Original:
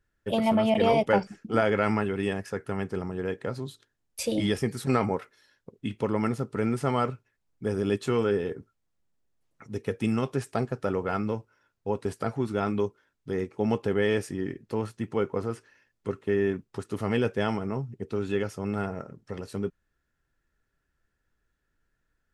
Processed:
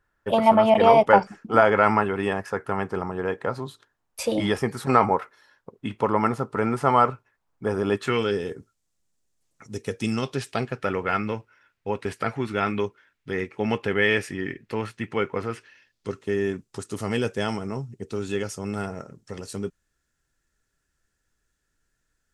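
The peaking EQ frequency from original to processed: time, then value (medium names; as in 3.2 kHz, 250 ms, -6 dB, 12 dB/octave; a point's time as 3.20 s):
peaking EQ +12.5 dB 1.6 oct
7.93 s 1 kHz
8.44 s 7.4 kHz
9.82 s 7.4 kHz
10.84 s 2.2 kHz
15.50 s 2.2 kHz
16.33 s 7.4 kHz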